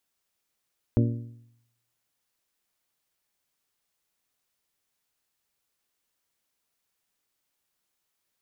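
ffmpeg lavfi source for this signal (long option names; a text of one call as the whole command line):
ffmpeg -f lavfi -i "aevalsrc='0.133*pow(10,-3*t/0.79)*sin(2*PI*117*t)+0.0891*pow(10,-3*t/0.642)*sin(2*PI*234*t)+0.0596*pow(10,-3*t/0.608)*sin(2*PI*280.8*t)+0.0398*pow(10,-3*t/0.568)*sin(2*PI*351*t)+0.0266*pow(10,-3*t/0.521)*sin(2*PI*468*t)+0.0178*pow(10,-3*t/0.487)*sin(2*PI*585*t)':duration=1.55:sample_rate=44100" out.wav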